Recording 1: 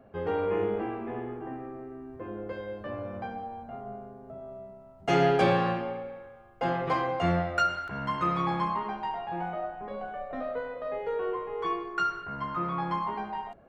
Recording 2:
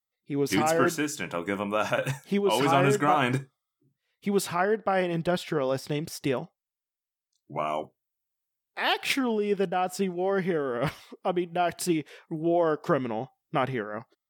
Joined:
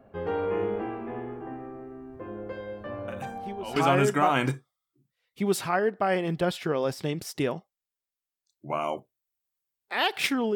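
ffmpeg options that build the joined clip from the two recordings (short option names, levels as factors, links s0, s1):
-filter_complex "[1:a]asplit=2[s0][s1];[0:a]apad=whole_dur=10.55,atrim=end=10.55,atrim=end=3.762[s2];[s1]atrim=start=2.618:end=9.41[s3];[s0]atrim=start=1.94:end=2.62,asetpts=PTS-STARTPTS,volume=0.224,afade=t=in:d=0.004:c=hsin,afade=t=out:st=0.676:d=0.004:c=hsin,adelay=3080[s4];[s2][s3]acrossfade=d=0.004:c1=hsin:c2=hsin[s5];[s5][s4]amix=inputs=2:normalize=0"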